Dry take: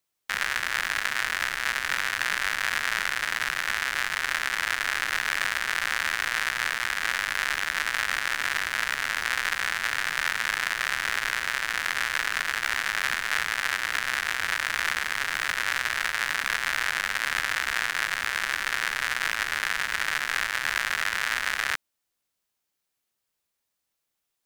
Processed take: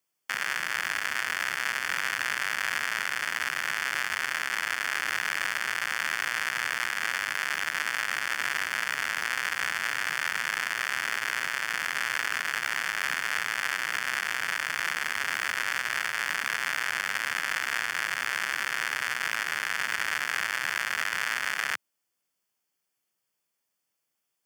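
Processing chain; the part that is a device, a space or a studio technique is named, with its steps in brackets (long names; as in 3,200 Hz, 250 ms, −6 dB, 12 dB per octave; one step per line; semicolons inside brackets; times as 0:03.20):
PA system with an anti-feedback notch (high-pass filter 110 Hz 24 dB per octave; Butterworth band-reject 3,900 Hz, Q 6.3; brickwall limiter −13 dBFS, peak gain reduction 4.5 dB)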